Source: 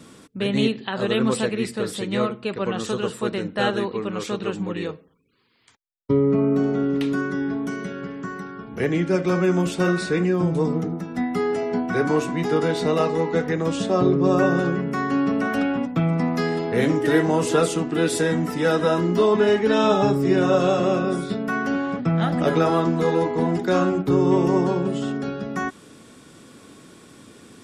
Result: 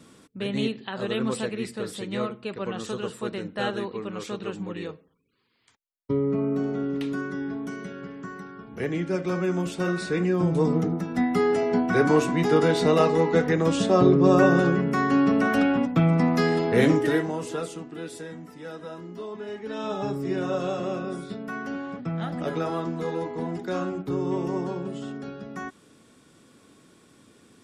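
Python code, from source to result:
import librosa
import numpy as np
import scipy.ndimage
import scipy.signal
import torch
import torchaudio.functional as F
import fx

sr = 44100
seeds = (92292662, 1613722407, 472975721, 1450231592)

y = fx.gain(x, sr, db=fx.line((9.84, -6.0), (10.84, 1.0), (16.93, 1.0), (17.33, -10.0), (18.45, -18.5), (19.43, -18.5), (20.14, -9.0)))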